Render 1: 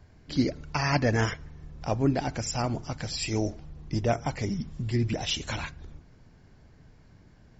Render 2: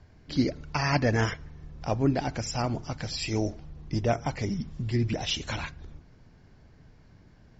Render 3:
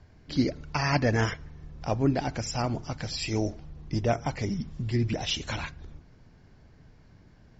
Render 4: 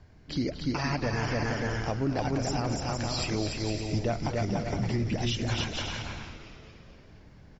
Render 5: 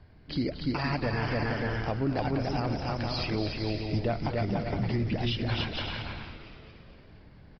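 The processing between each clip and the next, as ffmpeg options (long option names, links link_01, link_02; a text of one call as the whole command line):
ffmpeg -i in.wav -af "lowpass=frequency=6800:width=0.5412,lowpass=frequency=6800:width=1.3066" out.wav
ffmpeg -i in.wav -af anull out.wav
ffmpeg -i in.wav -filter_complex "[0:a]asplit=2[link_01][link_02];[link_02]aecho=0:1:290|464|568.4|631|668.6:0.631|0.398|0.251|0.158|0.1[link_03];[link_01][link_03]amix=inputs=2:normalize=0,alimiter=limit=-20dB:level=0:latency=1:release=143,asplit=2[link_04][link_05];[link_05]asplit=7[link_06][link_07][link_08][link_09][link_10][link_11][link_12];[link_06]adelay=229,afreqshift=-110,volume=-12dB[link_13];[link_07]adelay=458,afreqshift=-220,volume=-16.6dB[link_14];[link_08]adelay=687,afreqshift=-330,volume=-21.2dB[link_15];[link_09]adelay=916,afreqshift=-440,volume=-25.7dB[link_16];[link_10]adelay=1145,afreqshift=-550,volume=-30.3dB[link_17];[link_11]adelay=1374,afreqshift=-660,volume=-34.9dB[link_18];[link_12]adelay=1603,afreqshift=-770,volume=-39.5dB[link_19];[link_13][link_14][link_15][link_16][link_17][link_18][link_19]amix=inputs=7:normalize=0[link_20];[link_04][link_20]amix=inputs=2:normalize=0" out.wav
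ffmpeg -i in.wav -af "aresample=11025,aresample=44100" out.wav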